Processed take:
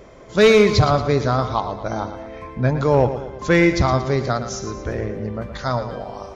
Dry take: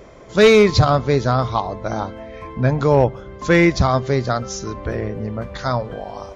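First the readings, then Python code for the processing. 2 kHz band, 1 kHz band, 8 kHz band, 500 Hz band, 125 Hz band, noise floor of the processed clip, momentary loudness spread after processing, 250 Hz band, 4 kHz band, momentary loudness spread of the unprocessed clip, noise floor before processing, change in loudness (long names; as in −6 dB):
−1.0 dB, −1.0 dB, can't be measured, −1.0 dB, −1.5 dB, −39 dBFS, 15 LU, −1.0 dB, −1.0 dB, 15 LU, −39 dBFS, −1.5 dB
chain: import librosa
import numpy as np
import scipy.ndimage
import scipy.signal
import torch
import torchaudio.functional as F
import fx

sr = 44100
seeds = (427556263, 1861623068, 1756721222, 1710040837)

y = fx.echo_feedback(x, sr, ms=115, feedback_pct=47, wet_db=-11)
y = F.gain(torch.from_numpy(y), -1.5).numpy()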